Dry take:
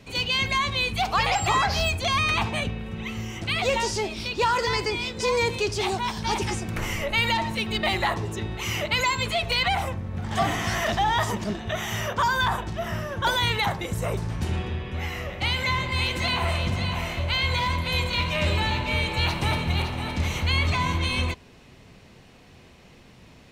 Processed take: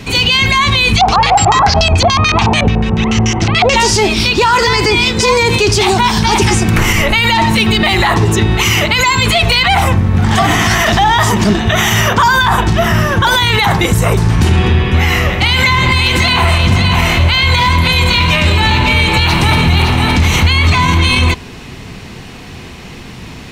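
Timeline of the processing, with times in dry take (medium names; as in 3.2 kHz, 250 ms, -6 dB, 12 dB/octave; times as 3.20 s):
0.94–3.76 s: LFO low-pass square 6.9 Hz 800–5900 Hz
whole clip: peaking EQ 570 Hz -7.5 dB 0.44 oct; loudness maximiser +22 dB; trim -1 dB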